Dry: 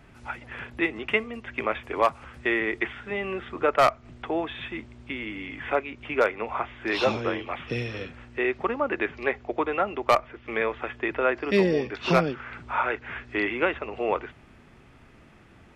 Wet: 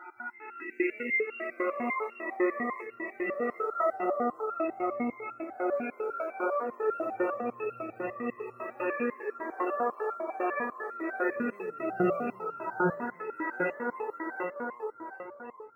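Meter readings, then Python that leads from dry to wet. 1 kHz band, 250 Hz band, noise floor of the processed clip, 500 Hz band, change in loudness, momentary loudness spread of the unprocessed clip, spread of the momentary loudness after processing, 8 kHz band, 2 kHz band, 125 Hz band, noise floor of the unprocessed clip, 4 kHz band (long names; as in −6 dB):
−5.0 dB, −3.5 dB, −53 dBFS, −5.0 dB, −5.5 dB, 12 LU, 10 LU, can't be measured, −6.5 dB, −11.0 dB, −53 dBFS, below −25 dB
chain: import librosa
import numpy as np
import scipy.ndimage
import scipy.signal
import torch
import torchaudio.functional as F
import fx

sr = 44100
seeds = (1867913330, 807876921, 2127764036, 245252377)

p1 = fx.spec_swells(x, sr, rise_s=1.98)
p2 = scipy.signal.sosfilt(scipy.signal.butter(2, 110.0, 'highpass', fs=sr, output='sos'), p1)
p3 = fx.high_shelf(p2, sr, hz=5900.0, db=-11.0)
p4 = fx.hum_notches(p3, sr, base_hz=50, count=6)
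p5 = fx.echo_feedback(p4, sr, ms=741, feedback_pct=36, wet_db=-4.0)
p6 = np.clip(p5, -10.0 ** (-21.0 / 20.0), 10.0 ** (-21.0 / 20.0))
p7 = p5 + F.gain(torch.from_numpy(p6), -10.0).numpy()
p8 = fx.spec_topn(p7, sr, count=32)
p9 = fx.quant_float(p8, sr, bits=6)
p10 = p9 + fx.echo_single(p9, sr, ms=300, db=-5.5, dry=0)
p11 = fx.resonator_held(p10, sr, hz=10.0, low_hz=180.0, high_hz=1400.0)
y = F.gain(torch.from_numpy(p11), 2.0).numpy()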